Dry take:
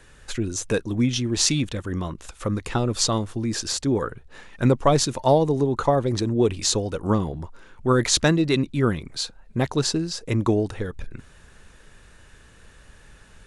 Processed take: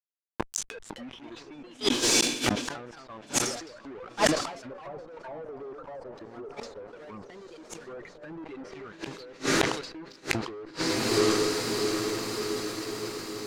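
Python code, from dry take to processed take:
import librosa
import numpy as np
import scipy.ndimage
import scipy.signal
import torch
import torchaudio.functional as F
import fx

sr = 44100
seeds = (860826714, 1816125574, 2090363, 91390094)

y = fx.bin_expand(x, sr, power=2.0)
y = scipy.signal.sosfilt(scipy.signal.butter(2, 580.0, 'highpass', fs=sr, output='sos'), y)
y = fx.transient(y, sr, attack_db=-7, sustain_db=3)
y = fx.hpss(y, sr, part='harmonic', gain_db=8)
y = fx.fuzz(y, sr, gain_db=42.0, gate_db=-39.0)
y = fx.echo_diffused(y, sr, ms=741, feedback_pct=62, wet_db=-14.0)
y = fx.echo_pitch(y, sr, ms=371, semitones=3, count=2, db_per_echo=-6.0)
y = fx.env_lowpass_down(y, sr, base_hz=990.0, full_db=-11.5)
y = fx.high_shelf(y, sr, hz=7700.0, db=4.5)
y = fx.gate_flip(y, sr, shuts_db=-17.0, range_db=-32)
y = fx.peak_eq(y, sr, hz=2800.0, db=-5.0, octaves=1.6, at=(5.75, 8.43))
y = fx.sustainer(y, sr, db_per_s=75.0)
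y = F.gain(torch.from_numpy(y), 7.0).numpy()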